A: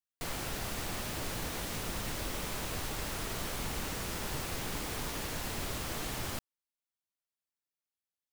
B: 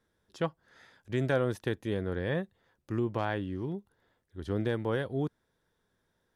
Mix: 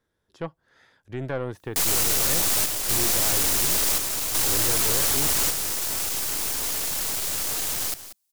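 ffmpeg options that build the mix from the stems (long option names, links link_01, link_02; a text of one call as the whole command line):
ffmpeg -i stem1.wav -i stem2.wav -filter_complex "[0:a]aeval=exprs='0.0668*sin(PI/2*3.16*val(0)/0.0668)':channel_layout=same,bass=frequency=250:gain=-7,treble=frequency=4000:gain=14,aeval=exprs='clip(val(0),-1,0.0708)':channel_layout=same,adelay=1550,volume=2dB,asplit=2[link_01][link_02];[link_02]volume=-20dB[link_03];[1:a]acrossover=split=2500[link_04][link_05];[link_05]acompressor=threshold=-52dB:ratio=4:attack=1:release=60[link_06];[link_04][link_06]amix=inputs=2:normalize=0,volume=1.5dB,asplit=2[link_07][link_08];[link_08]apad=whole_len=435635[link_09];[link_01][link_09]sidechaingate=range=-7dB:threshold=-59dB:ratio=16:detection=peak[link_10];[link_03]aecho=0:1:186:1[link_11];[link_10][link_07][link_11]amix=inputs=3:normalize=0,aeval=exprs='(tanh(7.08*val(0)+0.5)-tanh(0.5))/7.08':channel_layout=same,equalizer=frequency=200:width_type=o:width=0.21:gain=-5" out.wav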